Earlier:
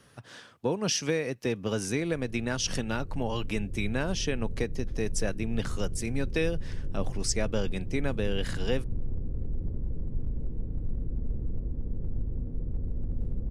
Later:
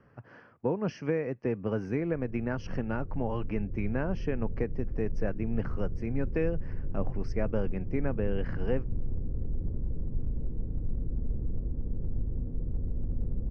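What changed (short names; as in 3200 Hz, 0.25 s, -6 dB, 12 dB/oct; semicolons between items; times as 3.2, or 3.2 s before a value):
speech: add air absorption 200 m; master: add running mean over 12 samples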